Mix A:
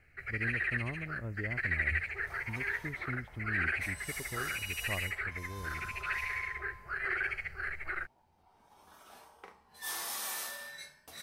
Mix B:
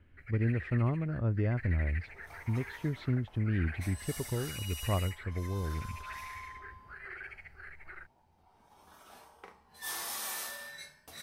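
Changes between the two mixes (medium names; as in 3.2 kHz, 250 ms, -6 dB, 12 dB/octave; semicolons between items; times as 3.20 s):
speech +7.0 dB; first sound -11.5 dB; master: add bass shelf 230 Hz +4 dB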